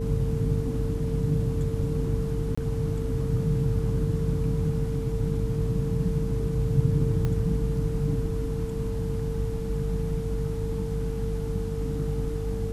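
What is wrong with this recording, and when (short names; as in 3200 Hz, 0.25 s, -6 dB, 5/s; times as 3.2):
hum 50 Hz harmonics 6 -31 dBFS
tone 450 Hz -33 dBFS
2.55–2.58 gap 25 ms
7.25 pop -17 dBFS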